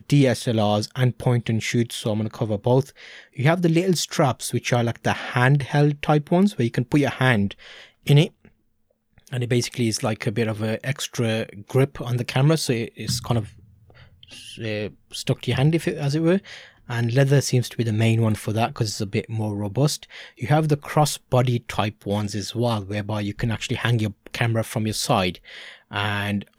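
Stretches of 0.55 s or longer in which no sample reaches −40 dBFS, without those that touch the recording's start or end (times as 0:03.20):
0:08.48–0:09.18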